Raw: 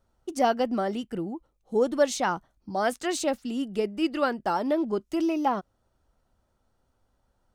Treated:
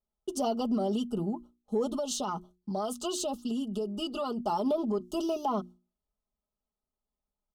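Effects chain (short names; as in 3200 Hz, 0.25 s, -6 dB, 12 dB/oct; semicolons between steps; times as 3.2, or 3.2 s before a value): elliptic band-stop 1300–2900 Hz, stop band 40 dB; gate with hold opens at -52 dBFS; notches 60/120/180/240/300/360 Hz; comb 4.8 ms, depth 81%; limiter -21.5 dBFS, peak gain reduction 12.5 dB; 1.87–4.38 compressor, threshold -29 dBFS, peak gain reduction 4.5 dB; added harmonics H 4 -39 dB, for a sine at -21.5 dBFS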